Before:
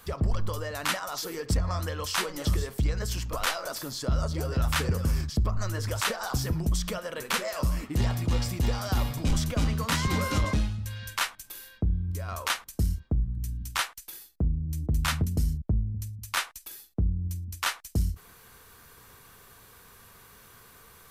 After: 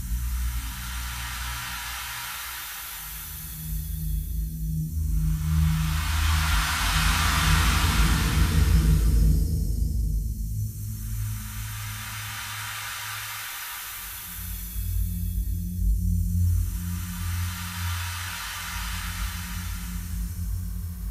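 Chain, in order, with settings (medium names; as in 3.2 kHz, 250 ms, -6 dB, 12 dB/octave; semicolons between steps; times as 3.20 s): slow attack 138 ms; spectral noise reduction 7 dB; Paulstretch 4.3×, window 1.00 s, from 13.40 s; trim +8 dB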